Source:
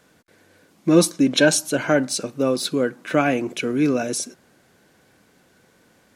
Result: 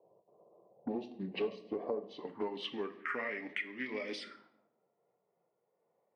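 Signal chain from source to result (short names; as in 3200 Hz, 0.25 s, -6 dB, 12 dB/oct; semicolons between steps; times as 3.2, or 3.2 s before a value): gliding pitch shift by -7.5 st ending unshifted; envelope phaser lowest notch 260 Hz, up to 1400 Hz, full sweep at -22.5 dBFS; band-pass sweep 600 Hz -> 1800 Hz, 1.95–2.94; compressor 10:1, threshold -44 dBFS, peak gain reduction 22.5 dB; HPF 190 Hz 12 dB/oct; high shelf 4900 Hz -9 dB; low-pass opened by the level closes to 330 Hz, open at -48 dBFS; shoebox room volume 170 m³, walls mixed, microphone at 0.34 m; Doppler distortion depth 0.2 ms; gain +10 dB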